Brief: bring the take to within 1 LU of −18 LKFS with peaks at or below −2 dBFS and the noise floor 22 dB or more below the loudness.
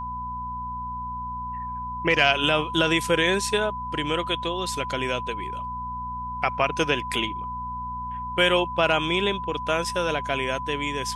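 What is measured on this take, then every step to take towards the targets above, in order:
mains hum 60 Hz; hum harmonics up to 240 Hz; level of the hum −37 dBFS; interfering tone 1,000 Hz; level of the tone −30 dBFS; integrated loudness −25.0 LKFS; sample peak −6.5 dBFS; target loudness −18.0 LKFS
→ hum removal 60 Hz, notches 4
notch filter 1,000 Hz, Q 30
level +7 dB
brickwall limiter −2 dBFS

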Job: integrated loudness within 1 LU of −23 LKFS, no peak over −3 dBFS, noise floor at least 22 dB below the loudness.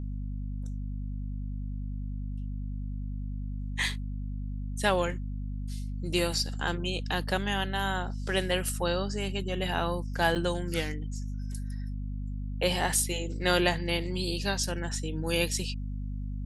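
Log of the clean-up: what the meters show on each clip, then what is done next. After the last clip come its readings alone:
number of dropouts 1; longest dropout 8.0 ms; mains hum 50 Hz; hum harmonics up to 250 Hz; level of the hum −32 dBFS; integrated loudness −31.5 LKFS; sample peak −8.5 dBFS; target loudness −23.0 LKFS
→ repair the gap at 0:10.35, 8 ms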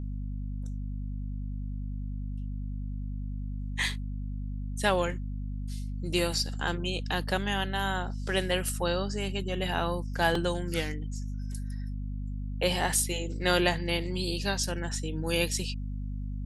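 number of dropouts 0; mains hum 50 Hz; hum harmonics up to 250 Hz; level of the hum −32 dBFS
→ hum removal 50 Hz, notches 5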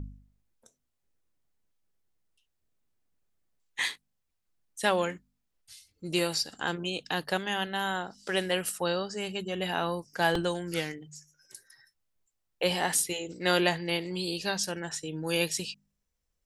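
mains hum none found; integrated loudness −30.5 LKFS; sample peak −9.0 dBFS; target loudness −23.0 LKFS
→ level +7.5 dB
brickwall limiter −3 dBFS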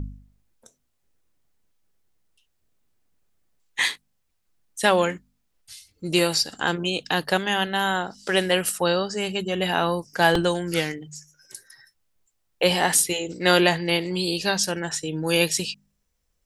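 integrated loudness −23.0 LKFS; sample peak −3.0 dBFS; background noise floor −72 dBFS

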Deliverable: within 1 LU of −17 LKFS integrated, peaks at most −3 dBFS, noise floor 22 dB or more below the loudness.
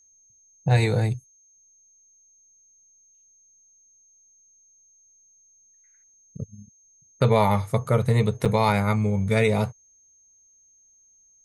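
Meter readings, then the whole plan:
number of dropouts 1; longest dropout 6.0 ms; interfering tone 6,400 Hz; level of the tone −56 dBFS; integrated loudness −23.0 LKFS; sample peak −7.0 dBFS; target loudness −17.0 LKFS
→ repair the gap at 0:08.45, 6 ms
notch filter 6,400 Hz, Q 30
level +6 dB
brickwall limiter −3 dBFS

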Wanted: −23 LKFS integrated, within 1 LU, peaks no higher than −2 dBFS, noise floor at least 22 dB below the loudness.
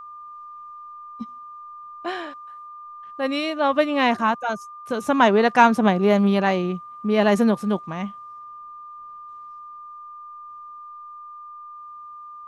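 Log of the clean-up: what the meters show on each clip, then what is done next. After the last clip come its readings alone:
interfering tone 1,200 Hz; level of the tone −37 dBFS; integrated loudness −21.0 LKFS; sample peak −1.5 dBFS; target loudness −23.0 LKFS
→ notch filter 1,200 Hz, Q 30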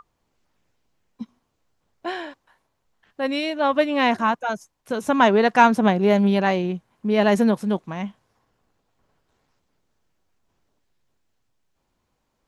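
interfering tone none found; integrated loudness −20.5 LKFS; sample peak −2.0 dBFS; target loudness −23.0 LKFS
→ level −2.5 dB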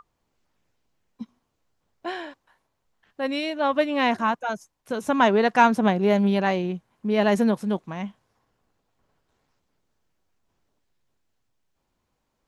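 integrated loudness −23.0 LKFS; sample peak −4.5 dBFS; background noise floor −76 dBFS

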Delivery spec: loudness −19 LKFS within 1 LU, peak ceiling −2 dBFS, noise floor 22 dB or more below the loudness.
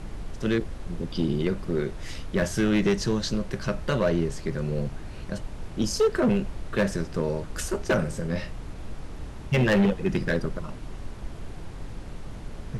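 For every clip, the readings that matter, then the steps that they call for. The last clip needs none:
share of clipped samples 1.3%; peaks flattened at −16.5 dBFS; background noise floor −39 dBFS; target noise floor −49 dBFS; integrated loudness −27.0 LKFS; sample peak −16.5 dBFS; target loudness −19.0 LKFS
→ clipped peaks rebuilt −16.5 dBFS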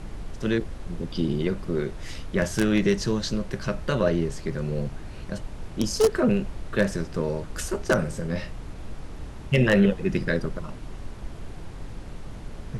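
share of clipped samples 0.0%; background noise floor −39 dBFS; target noise floor −48 dBFS
→ noise reduction from a noise print 9 dB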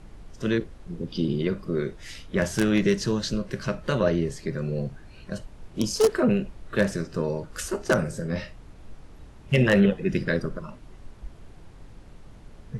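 background noise floor −47 dBFS; target noise floor −48 dBFS
→ noise reduction from a noise print 6 dB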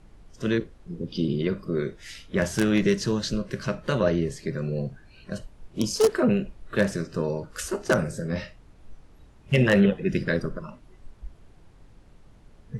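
background noise floor −53 dBFS; integrated loudness −26.0 LKFS; sample peak −7.5 dBFS; target loudness −19.0 LKFS
→ level +7 dB
brickwall limiter −2 dBFS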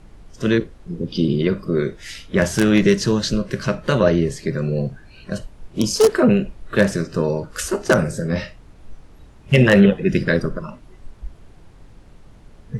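integrated loudness −19.0 LKFS; sample peak −2.0 dBFS; background noise floor −46 dBFS

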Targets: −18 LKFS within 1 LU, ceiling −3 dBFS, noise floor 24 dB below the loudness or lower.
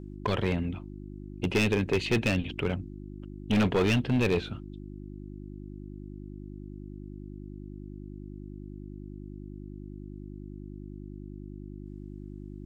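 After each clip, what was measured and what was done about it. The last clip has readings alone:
share of clipped samples 1.2%; peaks flattened at −19.5 dBFS; mains hum 50 Hz; hum harmonics up to 350 Hz; level of the hum −39 dBFS; integrated loudness −28.5 LKFS; sample peak −19.5 dBFS; target loudness −18.0 LKFS
→ clipped peaks rebuilt −19.5 dBFS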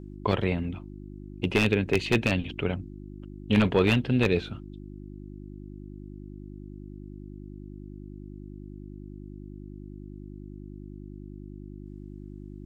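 share of clipped samples 0.0%; mains hum 50 Hz; hum harmonics up to 350 Hz; level of the hum −39 dBFS
→ hum removal 50 Hz, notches 7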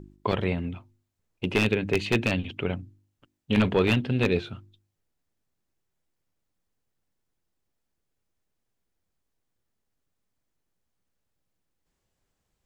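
mains hum none found; integrated loudness −26.0 LKFS; sample peak −9.5 dBFS; target loudness −18.0 LKFS
→ level +8 dB
brickwall limiter −3 dBFS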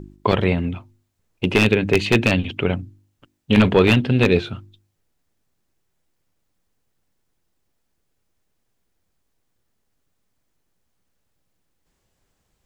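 integrated loudness −18.5 LKFS; sample peak −3.0 dBFS; background noise floor −72 dBFS

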